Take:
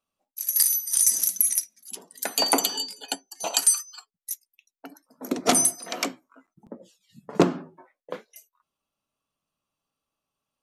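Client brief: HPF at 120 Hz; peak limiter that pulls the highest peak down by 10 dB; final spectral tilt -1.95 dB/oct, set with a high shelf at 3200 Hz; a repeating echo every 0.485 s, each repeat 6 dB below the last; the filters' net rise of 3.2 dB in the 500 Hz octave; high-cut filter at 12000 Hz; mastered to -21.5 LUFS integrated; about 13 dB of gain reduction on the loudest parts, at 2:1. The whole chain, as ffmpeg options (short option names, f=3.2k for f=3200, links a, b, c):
-af "highpass=120,lowpass=12k,equalizer=f=500:t=o:g=4.5,highshelf=f=3.2k:g=-5.5,acompressor=threshold=-37dB:ratio=2,alimiter=level_in=2dB:limit=-24dB:level=0:latency=1,volume=-2dB,aecho=1:1:485|970|1455|1940|2425|2910:0.501|0.251|0.125|0.0626|0.0313|0.0157,volume=17.5dB"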